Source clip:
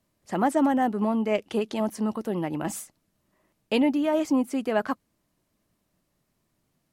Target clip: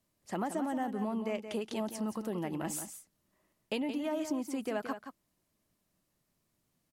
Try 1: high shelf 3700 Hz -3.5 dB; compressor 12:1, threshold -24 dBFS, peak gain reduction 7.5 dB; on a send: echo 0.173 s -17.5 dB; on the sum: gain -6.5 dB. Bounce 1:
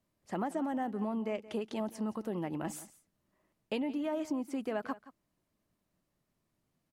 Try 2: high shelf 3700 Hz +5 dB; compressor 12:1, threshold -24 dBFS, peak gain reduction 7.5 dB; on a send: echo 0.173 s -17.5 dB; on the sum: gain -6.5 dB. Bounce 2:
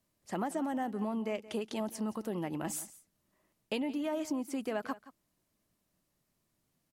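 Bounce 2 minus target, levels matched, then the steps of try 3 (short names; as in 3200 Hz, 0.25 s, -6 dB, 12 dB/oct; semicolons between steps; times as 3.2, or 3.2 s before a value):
echo-to-direct -8 dB
high shelf 3700 Hz +5 dB; compressor 12:1, threshold -24 dBFS, peak gain reduction 7.5 dB; on a send: echo 0.173 s -9.5 dB; on the sum: gain -6.5 dB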